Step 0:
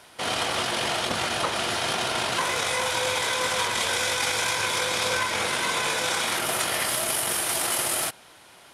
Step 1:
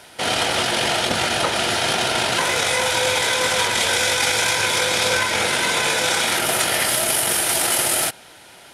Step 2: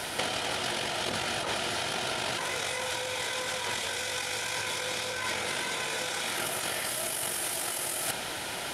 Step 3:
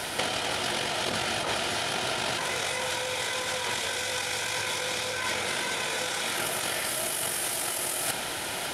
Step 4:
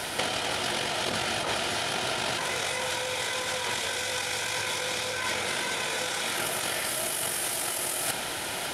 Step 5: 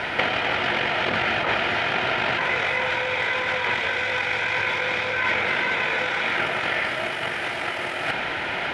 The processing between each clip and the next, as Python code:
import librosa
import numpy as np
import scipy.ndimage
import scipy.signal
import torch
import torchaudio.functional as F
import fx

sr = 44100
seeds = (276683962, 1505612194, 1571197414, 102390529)

y1 = fx.notch(x, sr, hz=1100.0, q=5.3)
y1 = F.gain(torch.from_numpy(y1), 6.5).numpy()
y2 = fx.over_compress(y1, sr, threshold_db=-31.0, ratio=-1.0)
y2 = F.gain(torch.from_numpy(y2), -1.5).numpy()
y3 = y2 + 10.0 ** (-11.0 / 20.0) * np.pad(y2, (int(550 * sr / 1000.0), 0))[:len(y2)]
y3 = F.gain(torch.from_numpy(y3), 2.0).numpy()
y4 = y3
y5 = fx.lowpass_res(y4, sr, hz=2200.0, q=1.9)
y5 = F.gain(torch.from_numpy(y5), 5.0).numpy()